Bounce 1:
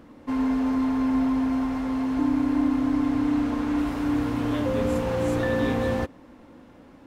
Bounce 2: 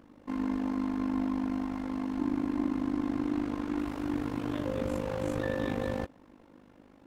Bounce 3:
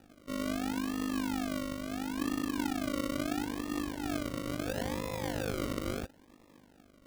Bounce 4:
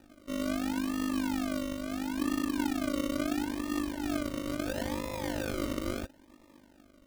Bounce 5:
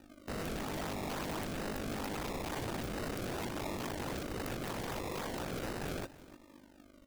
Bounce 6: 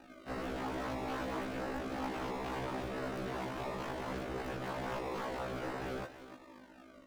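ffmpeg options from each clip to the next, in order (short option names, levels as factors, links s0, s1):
-af "tremolo=f=50:d=0.857,volume=0.631"
-af "acrusher=samples=41:mix=1:aa=0.000001:lfo=1:lforange=24.6:lforate=0.74,volume=0.708"
-af "aecho=1:1:3.3:0.47"
-af "aeval=exprs='(mod(47.3*val(0)+1,2)-1)/47.3':c=same,aecho=1:1:302:0.126"
-filter_complex "[0:a]asplit=2[s0][s1];[s1]highpass=f=720:p=1,volume=5.01,asoftclip=type=tanh:threshold=0.0251[s2];[s0][s2]amix=inputs=2:normalize=0,lowpass=f=1800:p=1,volume=0.501,afftfilt=real='re*1.73*eq(mod(b,3),0)':imag='im*1.73*eq(mod(b,3),0)':win_size=2048:overlap=0.75,volume=1.41"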